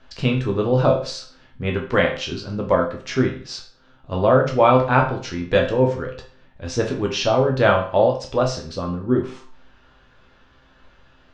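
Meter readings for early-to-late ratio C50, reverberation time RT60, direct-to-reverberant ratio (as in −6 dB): 7.5 dB, 0.45 s, 0.5 dB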